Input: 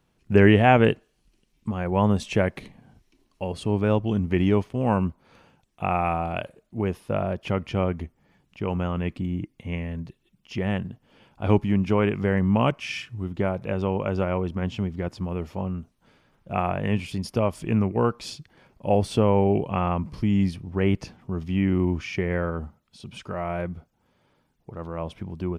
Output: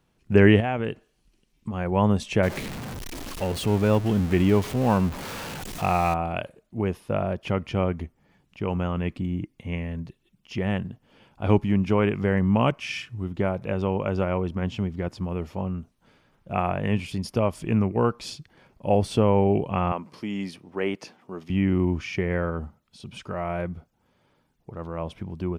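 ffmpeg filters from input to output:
ffmpeg -i in.wav -filter_complex "[0:a]asettb=1/sr,asplit=3[link_01][link_02][link_03];[link_01]atrim=end=0.604[link_04];[link_02]atrim=start=0.6:end=1.74,asetpts=PTS-STARTPTS,afade=type=in:duration=0.004:curve=qsin,afade=type=out:start_time=1.136:duration=0.004:curve=qsin,acompressor=threshold=-27dB:ratio=2.5:attack=3.2:release=140:knee=1:detection=peak[link_05];[link_03]atrim=start=1.736[link_06];[link_04][link_05]acrossfade=duration=0.004:curve1=hsin:curve2=qsin[link_07];[link_07][link_06]acrossfade=duration=0.004:curve1=qsin:curve2=hsin,asettb=1/sr,asplit=3[link_08][link_09][link_10];[link_08]atrim=end=2.434[link_11];[link_09]atrim=start=2.43:end=6.14,asetpts=PTS-STARTPTS,afade=type=in:duration=0.004:curve=qsin,afade=type=out:start_time=3.706:duration=0.004:curve=qsin,aeval=exprs='val(0)+0.5*0.0335*sgn(val(0))':channel_layout=same[link_12];[link_10]atrim=start=6.136[link_13];[link_11][link_12]acrossfade=duration=0.004:curve1=hsin:curve2=qsin[link_14];[link_14][link_13]acrossfade=duration=0.004:curve1=qsin:curve2=hsin,asettb=1/sr,asplit=3[link_15][link_16][link_17];[link_15]atrim=end=19.924[link_18];[link_16]atrim=start=19.92:end=21.5,asetpts=PTS-STARTPTS,afade=type=in:duration=0.004:curve=qsin,afade=type=out:start_time=1.576:duration=0.004:curve=qsin,highpass=330[link_19];[link_17]atrim=start=21.496[link_20];[link_18][link_19]acrossfade=duration=0.004:curve1=hsin:curve2=qsin[link_21];[link_21][link_20]acrossfade=duration=0.004:curve1=qsin:curve2=hsin" out.wav

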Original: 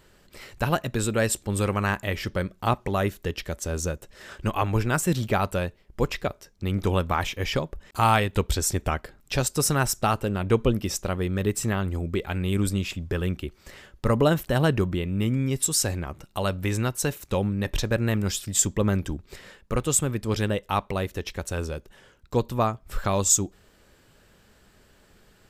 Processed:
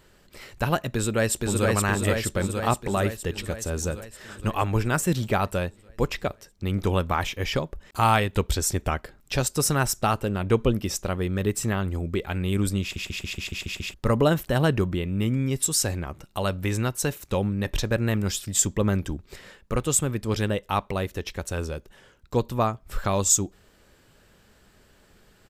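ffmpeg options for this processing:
ffmpeg -i in.wav -filter_complex "[0:a]asplit=2[link_01][link_02];[link_02]afade=type=in:start_time=0.92:duration=0.01,afade=type=out:start_time=1.66:duration=0.01,aecho=0:1:470|940|1410|1880|2350|2820|3290|3760|4230|4700|5170:0.841395|0.546907|0.355489|0.231068|0.150194|0.0976263|0.0634571|0.0412471|0.0268106|0.0174269|0.0113275[link_03];[link_01][link_03]amix=inputs=2:normalize=0,asplit=9[link_04][link_05][link_06][link_07][link_08][link_09][link_10][link_11][link_12];[link_04]atrim=end=12.962[link_13];[link_05]atrim=start=12.818:end=12.962[link_14];[link_06]atrim=start=12.818:end=12.962[link_15];[link_07]atrim=start=12.818:end=12.962[link_16];[link_08]atrim=start=12.818:end=12.962[link_17];[link_09]atrim=start=12.818:end=12.962[link_18];[link_10]atrim=start=12.818:end=12.962[link_19];[link_11]atrim=start=12.818:end=12.962[link_20];[link_12]atrim=start=13.938[link_21];[link_13][link_14]acrossfade=duration=0.004:curve1=hsin:curve2=hsin[link_22];[link_22][link_15]acrossfade=duration=0.004:curve1=hsin:curve2=hsin[link_23];[link_23][link_16]acrossfade=duration=0.004:curve1=hsin:curve2=hsin[link_24];[link_24][link_17]acrossfade=duration=0.004:curve1=hsin:curve2=hsin[link_25];[link_25][link_18]acrossfade=duration=0.004:curve1=hsin:curve2=hsin[link_26];[link_26][link_19]acrossfade=duration=0.004:curve1=hsin:curve2=hsin[link_27];[link_27][link_20]acrossfade=duration=0.004:curve1=hsin:curve2=hsin[link_28];[link_28][link_21]acrossfade=duration=0.004:curve1=hsin:curve2=hsin" out.wav

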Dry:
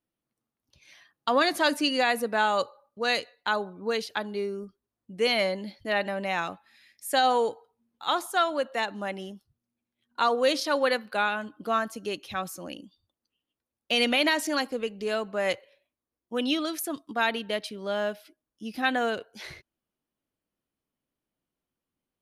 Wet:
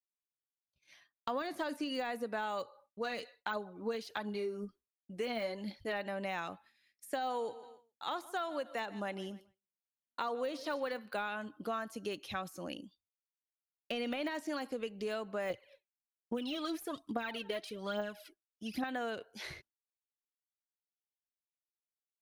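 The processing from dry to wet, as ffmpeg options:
ffmpeg -i in.wav -filter_complex "[0:a]asplit=3[link_01][link_02][link_03];[link_01]afade=type=out:start_time=3.04:duration=0.02[link_04];[link_02]aphaser=in_gain=1:out_gain=1:delay=4.7:decay=0.44:speed=1.4:type=triangular,afade=type=in:start_time=3.04:duration=0.02,afade=type=out:start_time=5.92:duration=0.02[link_05];[link_03]afade=type=in:start_time=5.92:duration=0.02[link_06];[link_04][link_05][link_06]amix=inputs=3:normalize=0,asettb=1/sr,asplit=3[link_07][link_08][link_09];[link_07]atrim=end=7.204[link_10];[link_08]atrim=start=7.2:end=10.99,asetpts=PTS-STARTPTS,afade=type=in:duration=0.004:curve=qsin,afade=type=out:start_time=3.786:duration=0.004:curve=qsin,aecho=1:1:144|288|432:0.0794|0.035|0.0154,atrim=end_sample=167139[link_11];[link_09]atrim=start=10.986[link_12];[link_10][link_11]acrossfade=duration=0.004:curve1=hsin:curve2=qsin[link_13];[link_13][link_12]acrossfade=duration=0.004:curve1=qsin:curve2=hsin,asettb=1/sr,asplit=3[link_14][link_15][link_16];[link_14]atrim=end=15.504[link_17];[link_15]atrim=start=15.5:end=18.84,asetpts=PTS-STARTPTS,afade=type=in:duration=0.004:curve=qsin,afade=type=out:start_time=3.336:duration=0.004:curve=qsin,aphaser=in_gain=1:out_gain=1:delay=3.1:decay=0.64:speed=1.2:type=triangular[link_18];[link_16]atrim=start=18.836[link_19];[link_17][link_18]acrossfade=duration=0.004:curve1=hsin:curve2=qsin[link_20];[link_20][link_19]acrossfade=duration=0.004:curve1=qsin:curve2=hsin,deesser=0.95,agate=range=-33dB:threshold=-49dB:ratio=3:detection=peak,acompressor=threshold=-32dB:ratio=4,volume=-3dB" out.wav

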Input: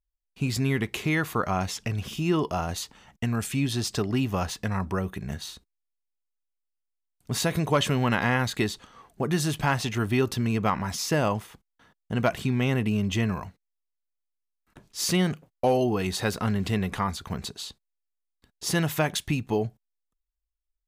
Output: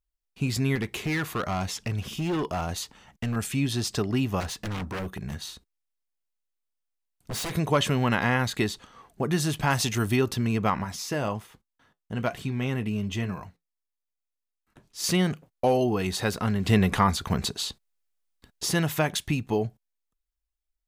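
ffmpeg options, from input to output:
ffmpeg -i in.wav -filter_complex "[0:a]asettb=1/sr,asplit=3[link_01][link_02][link_03];[link_01]atrim=end=0.754[link_04];[link_02]atrim=start=0.75:end=3.36,asetpts=PTS-STARTPTS,afade=type=in:duration=0.004:curve=qsin,afade=type=out:start_time=2.606:duration=0.004:curve=qsin,asoftclip=type=hard:threshold=-24dB[link_05];[link_03]atrim=start=3.356[link_06];[link_04][link_05]acrossfade=duration=0.004:curve1=hsin:curve2=qsin[link_07];[link_07][link_06]acrossfade=duration=0.004:curve1=qsin:curve2=hsin,asettb=1/sr,asplit=3[link_08][link_09][link_10];[link_08]atrim=end=4.404[link_11];[link_09]atrim=start=4.4:end=7.54,asetpts=PTS-STARTPTS,afade=type=in:duration=0.004:curve=qsin,afade=type=out:start_time=3.136:duration=0.004:curve=qsin,aeval=exprs='0.0473*(abs(mod(val(0)/0.0473+3,4)-2)-1)':channel_layout=same[link_12];[link_10]atrim=start=7.536[link_13];[link_11][link_12]acrossfade=duration=0.004:curve1=hsin:curve2=qsin[link_14];[link_14][link_13]acrossfade=duration=0.004:curve1=qsin:curve2=hsin,asettb=1/sr,asplit=3[link_15][link_16][link_17];[link_15]atrim=end=9.704[link_18];[link_16]atrim=start=9.7:end=10.16,asetpts=PTS-STARTPTS,afade=type=in:duration=0.004:curve=qsin,afade=type=out:start_time=0.456:duration=0.004:curve=qsin,bass=frequency=250:gain=1,treble=frequency=4000:gain=9[link_19];[link_17]atrim=start=10.156[link_20];[link_18][link_19]acrossfade=duration=0.004:curve1=hsin:curve2=qsin[link_21];[link_21][link_20]acrossfade=duration=0.004:curve1=qsin:curve2=hsin,asettb=1/sr,asplit=3[link_22][link_23][link_24];[link_22]atrim=end=10.844[link_25];[link_23]atrim=start=10.84:end=15.04,asetpts=PTS-STARTPTS,afade=type=in:duration=0.004:curve=qsin,afade=type=out:start_time=4.196:duration=0.004:curve=qsin,flanger=delay=6:depth=4.3:regen=-66:speed=1.2:shape=triangular[link_26];[link_24]atrim=start=15.036[link_27];[link_25][link_26]acrossfade=duration=0.004:curve1=hsin:curve2=qsin[link_28];[link_28][link_27]acrossfade=duration=0.004:curve1=qsin:curve2=hsin,asplit=3[link_29][link_30][link_31];[link_29]afade=type=out:start_time=16.67:duration=0.02[link_32];[link_30]acontrast=57,afade=type=in:start_time=16.67:duration=0.02,afade=type=out:start_time=18.65:duration=0.02[link_33];[link_31]afade=type=in:start_time=18.65:duration=0.02[link_34];[link_32][link_33][link_34]amix=inputs=3:normalize=0" out.wav

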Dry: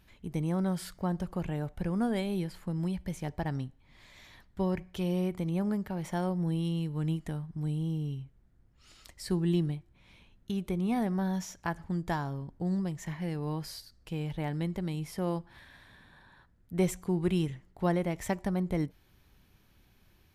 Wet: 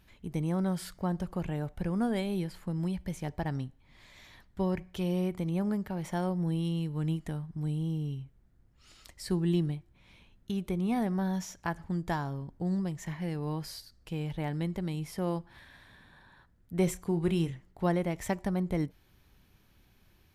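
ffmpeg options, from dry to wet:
ffmpeg -i in.wav -filter_complex "[0:a]asettb=1/sr,asplit=3[link_01][link_02][link_03];[link_01]atrim=end=16.844[link_04];[link_02]atrim=start=16.84:end=17.51,asetpts=PTS-STARTPTS,afade=type=in:duration=0.004:curve=qsin,afade=type=out:start_time=0.666:duration=0.004:curve=qsin,asplit=2[link_05][link_06];[link_06]adelay=30,volume=-12dB[link_07];[link_05][link_07]amix=inputs=2:normalize=0,atrim=end_sample=29547[link_08];[link_03]atrim=start=17.506[link_09];[link_04][link_08]acrossfade=duration=0.004:curve1=hsin:curve2=qsin[link_10];[link_10][link_09]acrossfade=duration=0.004:curve1=qsin:curve2=hsin" out.wav

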